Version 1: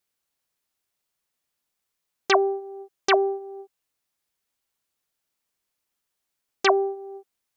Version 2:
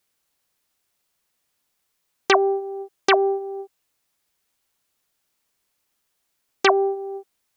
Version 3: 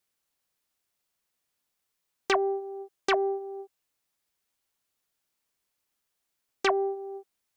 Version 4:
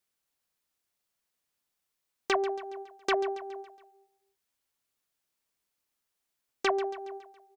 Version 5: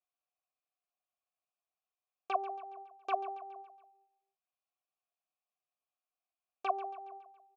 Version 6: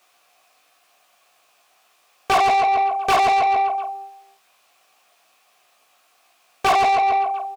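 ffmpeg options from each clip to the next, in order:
ffmpeg -i in.wav -filter_complex "[0:a]acrossover=split=900|3900[link_01][link_02][link_03];[link_01]acompressor=threshold=-24dB:ratio=4[link_04];[link_02]acompressor=threshold=-24dB:ratio=4[link_05];[link_03]acompressor=threshold=-41dB:ratio=4[link_06];[link_04][link_05][link_06]amix=inputs=3:normalize=0,volume=7dB" out.wav
ffmpeg -i in.wav -af "asoftclip=type=tanh:threshold=-6dB,volume=-7dB" out.wav
ffmpeg -i in.wav -af "aecho=1:1:139|278|417|556|695:0.2|0.104|0.054|0.0281|0.0146,volume=-2.5dB" out.wav
ffmpeg -i in.wav -filter_complex "[0:a]asplit=3[link_01][link_02][link_03];[link_01]bandpass=frequency=730:width_type=q:width=8,volume=0dB[link_04];[link_02]bandpass=frequency=1090:width_type=q:width=8,volume=-6dB[link_05];[link_03]bandpass=frequency=2440:width_type=q:width=8,volume=-9dB[link_06];[link_04][link_05][link_06]amix=inputs=3:normalize=0,volume=2dB" out.wav
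ffmpeg -i in.wav -filter_complex "[0:a]aecho=1:1:17|50:0.562|0.282,asplit=2[link_01][link_02];[link_02]highpass=frequency=720:poles=1,volume=35dB,asoftclip=type=tanh:threshold=-18.5dB[link_03];[link_01][link_03]amix=inputs=2:normalize=0,lowpass=frequency=4300:poles=1,volume=-6dB,volume=8.5dB" out.wav

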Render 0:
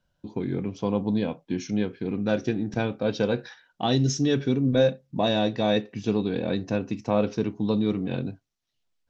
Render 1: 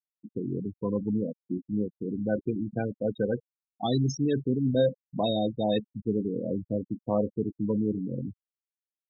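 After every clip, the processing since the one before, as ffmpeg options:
ffmpeg -i in.wav -af "afftfilt=real='re*gte(hypot(re,im),0.112)':imag='im*gte(hypot(re,im),0.112)':win_size=1024:overlap=0.75,volume=-3dB" out.wav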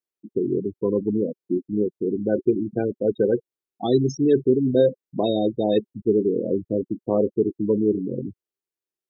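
ffmpeg -i in.wav -af "equalizer=frequency=380:width_type=o:width=0.7:gain=15" out.wav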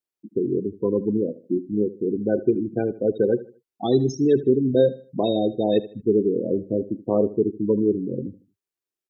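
ffmpeg -i in.wav -af "aecho=1:1:77|154|231:0.141|0.0438|0.0136" out.wav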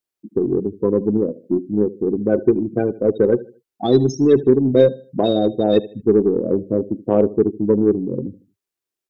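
ffmpeg -i in.wav -af "aeval=exprs='0.501*(cos(1*acos(clip(val(0)/0.501,-1,1)))-cos(1*PI/2))+0.00891*(cos(7*acos(clip(val(0)/0.501,-1,1)))-cos(7*PI/2))+0.00398*(cos(8*acos(clip(val(0)/0.501,-1,1)))-cos(8*PI/2))':channel_layout=same,volume=5dB" out.wav

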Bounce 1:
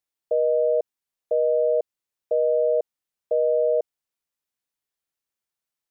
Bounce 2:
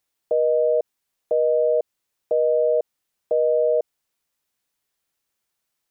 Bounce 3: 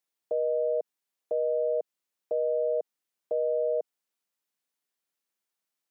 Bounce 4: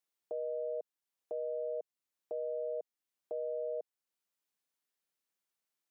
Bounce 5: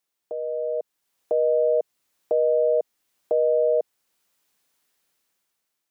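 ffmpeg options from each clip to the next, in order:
ffmpeg -i in.wav -af "alimiter=limit=-22dB:level=0:latency=1:release=62,volume=9dB" out.wav
ffmpeg -i in.wav -af "highpass=frequency=160:width=0.5412,highpass=frequency=160:width=1.3066,volume=-8dB" out.wav
ffmpeg -i in.wav -af "alimiter=level_in=4dB:limit=-24dB:level=0:latency=1:release=487,volume=-4dB,volume=-3dB" out.wav
ffmpeg -i in.wav -af "dynaudnorm=framelen=370:gausssize=5:maxgain=10dB,volume=7dB" out.wav

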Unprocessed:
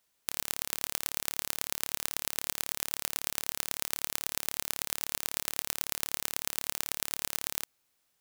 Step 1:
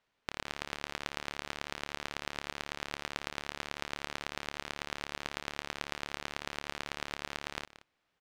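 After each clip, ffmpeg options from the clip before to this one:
ffmpeg -i in.wav -af "lowpass=2800,aecho=1:1:179:0.158,volume=3dB" out.wav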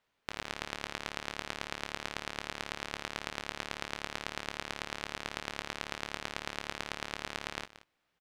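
ffmpeg -i in.wav -filter_complex "[0:a]asplit=2[link_01][link_02];[link_02]adelay=18,volume=-11dB[link_03];[link_01][link_03]amix=inputs=2:normalize=0" out.wav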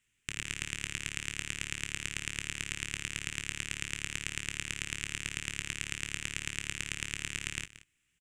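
ffmpeg -i in.wav -af "firequalizer=gain_entry='entry(120,0);entry(190,-7);entry(380,-12);entry(590,-29);entry(1800,-6);entry(2700,0);entry(4300,-14);entry(7500,9);entry(14000,-8)':delay=0.05:min_phase=1,volume=7.5dB" out.wav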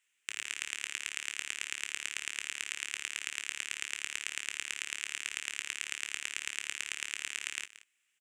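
ffmpeg -i in.wav -af "highpass=620" out.wav

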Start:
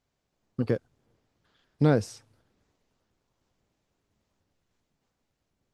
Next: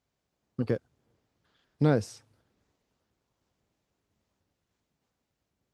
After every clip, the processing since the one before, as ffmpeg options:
ffmpeg -i in.wav -af "highpass=41,volume=-2dB" out.wav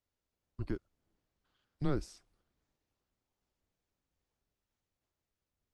ffmpeg -i in.wav -af "afreqshift=-140,volume=-8dB" out.wav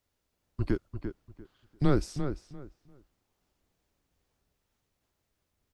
ffmpeg -i in.wav -filter_complex "[0:a]asplit=2[link_01][link_02];[link_02]adelay=345,lowpass=frequency=2600:poles=1,volume=-8dB,asplit=2[link_03][link_04];[link_04]adelay=345,lowpass=frequency=2600:poles=1,volume=0.22,asplit=2[link_05][link_06];[link_06]adelay=345,lowpass=frequency=2600:poles=1,volume=0.22[link_07];[link_01][link_03][link_05][link_07]amix=inputs=4:normalize=0,volume=8.5dB" out.wav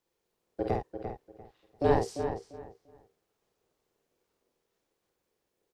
ffmpeg -i in.wav -filter_complex "[0:a]aeval=exprs='val(0)*sin(2*PI*430*n/s)':channel_layout=same,asplit=2[link_01][link_02];[link_02]adelay=50,volume=-4dB[link_03];[link_01][link_03]amix=inputs=2:normalize=0" out.wav

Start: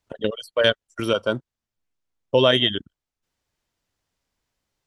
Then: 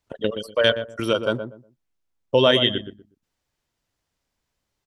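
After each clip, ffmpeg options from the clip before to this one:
ffmpeg -i in.wav -filter_complex "[0:a]asplit=2[link_01][link_02];[link_02]adelay=121,lowpass=frequency=830:poles=1,volume=-7.5dB,asplit=2[link_03][link_04];[link_04]adelay=121,lowpass=frequency=830:poles=1,volume=0.25,asplit=2[link_05][link_06];[link_06]adelay=121,lowpass=frequency=830:poles=1,volume=0.25[link_07];[link_01][link_03][link_05][link_07]amix=inputs=4:normalize=0" out.wav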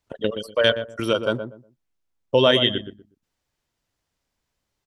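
ffmpeg -i in.wav -af anull out.wav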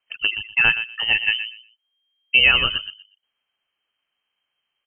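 ffmpeg -i in.wav -af "lowpass=frequency=2700:width_type=q:width=0.5098,lowpass=frequency=2700:width_type=q:width=0.6013,lowpass=frequency=2700:width_type=q:width=0.9,lowpass=frequency=2700:width_type=q:width=2.563,afreqshift=-3200,volume=2dB" out.wav

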